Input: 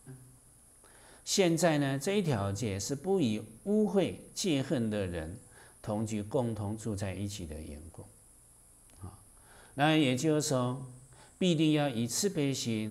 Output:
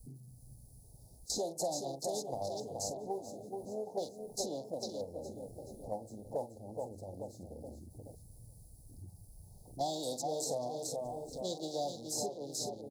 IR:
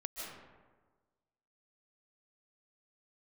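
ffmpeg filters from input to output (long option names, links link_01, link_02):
-filter_complex "[0:a]aeval=exprs='val(0)+0.5*0.0106*sgn(val(0))':channel_layout=same,acrossover=split=550|1300[link_01][link_02][link_03];[link_01]acompressor=threshold=-43dB:ratio=8[link_04];[link_04][link_02][link_03]amix=inputs=3:normalize=0,agate=range=-11dB:threshold=-35dB:ratio=16:detection=peak,asplit=2[link_05][link_06];[link_06]aeval=exprs='val(0)*gte(abs(val(0)),0.00237)':channel_layout=same,volume=-10dB[link_07];[link_05][link_07]amix=inputs=2:normalize=0,asplit=2[link_08][link_09];[link_09]adelay=44,volume=-12.5dB[link_10];[link_08][link_10]amix=inputs=2:normalize=0,aecho=1:1:425|850|1275|1700|2125|2550:0.376|0.188|0.094|0.047|0.0235|0.0117,asplit=2[link_11][link_12];[link_12]asetrate=52444,aresample=44100,atempo=0.840896,volume=-15dB[link_13];[link_11][link_13]amix=inputs=2:normalize=0,afwtdn=0.00501,asuperstop=centerf=1900:order=12:qfactor=0.54,acrossover=split=510|2400[link_14][link_15][link_16];[link_14]acompressor=threshold=-50dB:ratio=4[link_17];[link_15]acompressor=threshold=-43dB:ratio=4[link_18];[link_16]acompressor=threshold=-46dB:ratio=4[link_19];[link_17][link_18][link_19]amix=inputs=3:normalize=0,volume=5.5dB"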